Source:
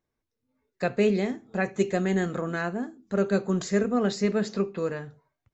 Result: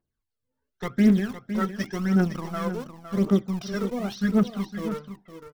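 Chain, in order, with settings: in parallel at -4.5 dB: sample gate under -27 dBFS; on the sum: formant shift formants -4 st; phaser 0.91 Hz, delay 2.3 ms, feedback 68%; echo 0.509 s -10.5 dB; gain -7 dB

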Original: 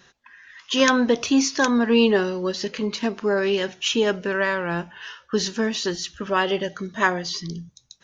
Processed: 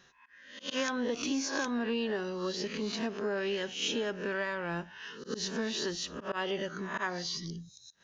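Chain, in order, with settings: spectral swells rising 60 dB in 0.49 s; auto swell 0.102 s; compressor 6:1, threshold -20 dBFS, peak gain reduction 8.5 dB; gain -9 dB

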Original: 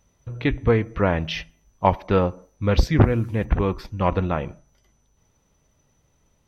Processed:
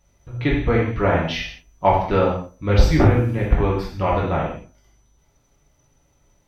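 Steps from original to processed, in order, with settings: non-linear reverb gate 0.22 s falling, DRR -4.5 dB; gain -2.5 dB

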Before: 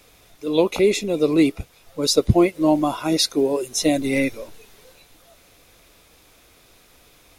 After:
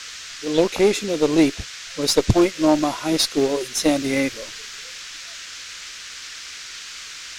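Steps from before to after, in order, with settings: band noise 1300–6800 Hz -35 dBFS; added harmonics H 4 -18 dB, 5 -16 dB, 7 -19 dB, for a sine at -2 dBFS; gain -1.5 dB

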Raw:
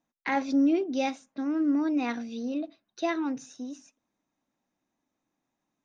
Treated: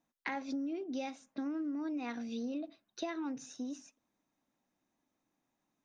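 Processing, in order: compressor 12:1, threshold -34 dBFS, peak gain reduction 14.5 dB; gain -1 dB

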